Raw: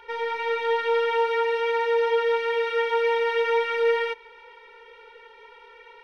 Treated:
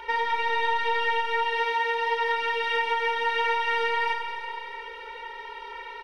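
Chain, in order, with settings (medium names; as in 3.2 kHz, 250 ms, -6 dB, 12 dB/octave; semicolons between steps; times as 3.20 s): comb 3.2 ms, depth 56%; compression, threshold -30 dBFS, peak gain reduction 10.5 dB; Schroeder reverb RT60 2.5 s, combs from 33 ms, DRR 3.5 dB; trim +7 dB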